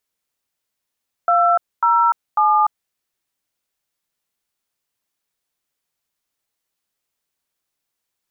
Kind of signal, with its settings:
touch tones "207", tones 295 ms, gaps 251 ms, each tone −14.5 dBFS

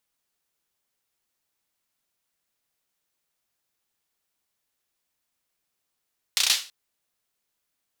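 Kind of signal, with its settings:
synth clap length 0.33 s, bursts 5, apart 32 ms, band 3,900 Hz, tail 0.33 s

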